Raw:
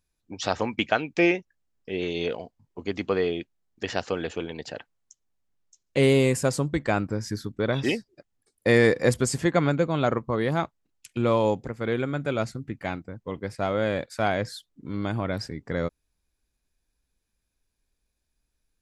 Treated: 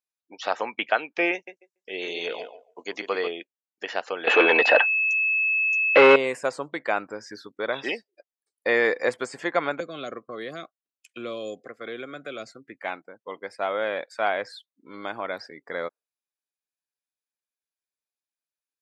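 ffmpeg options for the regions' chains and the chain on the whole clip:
-filter_complex "[0:a]asettb=1/sr,asplit=3[a][b][c];[a]atrim=end=1.334[d];[b]atrim=start=1.33:end=3.28,asetpts=PTS-STARTPTS,afade=t=in:d=0.004:c=qsin,afade=t=out:st=1.946:d=0.004:c=qsin,equalizer=f=6.6k:w=0.95:g=13,asplit=2[e][f];[f]adelay=142,lowpass=f=2.9k:p=1,volume=-8.5dB,asplit=2[g][h];[h]adelay=142,lowpass=f=2.9k:p=1,volume=0.23,asplit=2[i][j];[j]adelay=142,lowpass=f=2.9k:p=1,volume=0.23[k];[e][g][i][k]amix=inputs=4:normalize=0,atrim=end_sample=85995[l];[c]atrim=start=3.276[m];[d][l]acrossfade=d=0.004:c1=hsin:c2=qsin[n];[n][m]acrossfade=d=0.004:c1=qsin:c2=hsin,asettb=1/sr,asplit=3[o][p][q];[o]atrim=end=4.274[r];[p]atrim=start=4.27:end=6.16,asetpts=PTS-STARTPTS,afade=t=in:d=0.004:c=qsin,afade=t=out:st=1.886:d=0.004:c=qsin,acontrast=90,asplit=2[s][t];[t]highpass=f=720:p=1,volume=28dB,asoftclip=type=tanh:threshold=-4dB[u];[s][u]amix=inputs=2:normalize=0,lowpass=f=2k:p=1,volume=-6dB,aeval=exprs='val(0)+0.1*sin(2*PI*2600*n/s)':c=same[v];[q]atrim=start=6.156[w];[r][v]acrossfade=d=0.004:c1=hsin:c2=qsin[x];[x][w]acrossfade=d=0.004:c1=qsin:c2=hsin,asettb=1/sr,asplit=3[y][z][aa];[y]atrim=end=9.804[ab];[z]atrim=start=9.8:end=12.82,asetpts=PTS-STARTPTS,afade=t=in:d=0.004:c=qsin,afade=t=out:st=3.016:d=0.004:c=qsin,acrossover=split=370|3000[ac][ad][ae];[ad]acompressor=threshold=-35dB:ratio=10:attack=3.2:release=140:knee=2.83:detection=peak[af];[ac][af][ae]amix=inputs=3:normalize=0,asuperstop=centerf=900:order=12:qfactor=3.7[ag];[aa]atrim=start=12.816[ah];[ab][ag]acrossfade=d=0.004:c1=hsin:c2=qsin[ai];[ai][ah]acrossfade=d=0.004:c1=qsin:c2=hsin,acrossover=split=3100[aj][ak];[ak]acompressor=threshold=-45dB:ratio=4:attack=1:release=60[al];[aj][al]amix=inputs=2:normalize=0,highpass=580,afftdn=nr=16:nf=-51,volume=2.5dB"

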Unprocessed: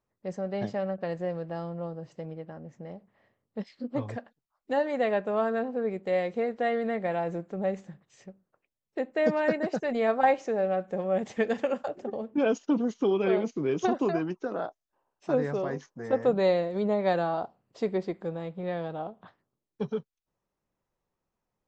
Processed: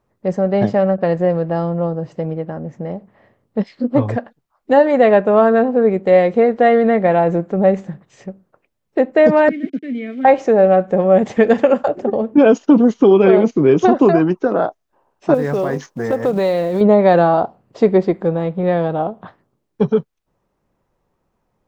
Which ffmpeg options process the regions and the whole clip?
-filter_complex "[0:a]asettb=1/sr,asplit=3[a][b][c];[a]atrim=end=9.494[d];[b]atrim=start=9.49:end=10.25,asetpts=PTS-STARTPTS,afade=t=in:d=0.004:c=qsin,afade=t=out:st=0.756:d=0.004:c=qsin,aeval=exprs='val(0)*gte(abs(val(0)),0.0106)':c=same,asplit=3[e][f][g];[e]bandpass=f=270:t=q:w=8,volume=0dB[h];[f]bandpass=f=2.29k:t=q:w=8,volume=-6dB[i];[g]bandpass=f=3.01k:t=q:w=8,volume=-9dB[j];[h][i][j]amix=inputs=3:normalize=0[k];[c]atrim=start=10.246[l];[d][k]acrossfade=d=0.004:c1=hsin:c2=qsin[m];[m][l]acrossfade=d=0.004:c1=qsin:c2=hsin,asettb=1/sr,asplit=3[n][o][p];[n]atrim=end=15.344[q];[o]atrim=start=15.34:end=16.81,asetpts=PTS-STARTPTS,afade=t=in:d=0.004:c=qsin,afade=t=out:st=1.466:d=0.004:c=qsin,highshelf=f=2.7k:g=9,acompressor=threshold=-32dB:ratio=3:attack=3.2:release=140:knee=1:detection=peak,acrusher=bits=6:mode=log:mix=0:aa=0.000001[r];[p]atrim=start=16.806[s];[q][r]acrossfade=d=0.004:c1=hsin:c2=qsin[t];[t][s]acrossfade=d=0.004:c1=qsin:c2=hsin,highshelf=f=2.3k:g=-10,alimiter=level_in=17.5dB:limit=-1dB:release=50:level=0:latency=1,volume=-1dB"

